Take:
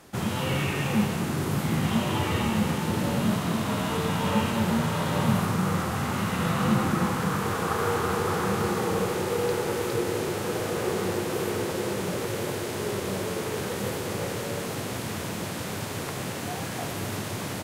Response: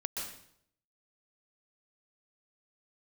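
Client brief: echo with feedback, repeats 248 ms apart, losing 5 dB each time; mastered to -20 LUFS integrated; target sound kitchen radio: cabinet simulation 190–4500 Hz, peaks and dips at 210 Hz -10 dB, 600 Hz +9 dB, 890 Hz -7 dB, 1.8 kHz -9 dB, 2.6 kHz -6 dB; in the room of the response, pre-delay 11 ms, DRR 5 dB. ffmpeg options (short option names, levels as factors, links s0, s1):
-filter_complex "[0:a]aecho=1:1:248|496|744|992|1240|1488|1736:0.562|0.315|0.176|0.0988|0.0553|0.031|0.0173,asplit=2[s0][s1];[1:a]atrim=start_sample=2205,adelay=11[s2];[s1][s2]afir=irnorm=-1:irlink=0,volume=0.447[s3];[s0][s3]amix=inputs=2:normalize=0,highpass=190,equalizer=f=210:t=q:w=4:g=-10,equalizer=f=600:t=q:w=4:g=9,equalizer=f=890:t=q:w=4:g=-7,equalizer=f=1800:t=q:w=4:g=-9,equalizer=f=2600:t=q:w=4:g=-6,lowpass=f=4500:w=0.5412,lowpass=f=4500:w=1.3066,volume=2.24"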